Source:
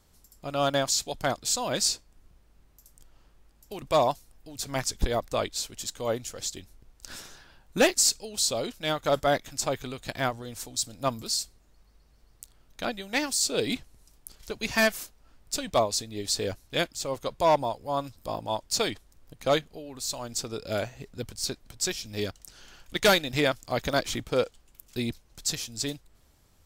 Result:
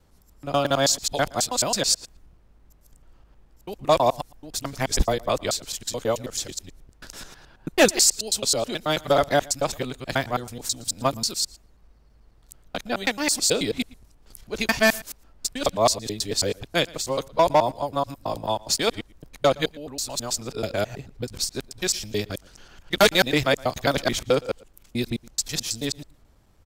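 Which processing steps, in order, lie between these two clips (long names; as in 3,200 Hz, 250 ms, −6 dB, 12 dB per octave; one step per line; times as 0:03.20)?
reversed piece by piece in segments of 108 ms
slap from a distant wall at 20 metres, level −23 dB
one half of a high-frequency compander decoder only
level +4.5 dB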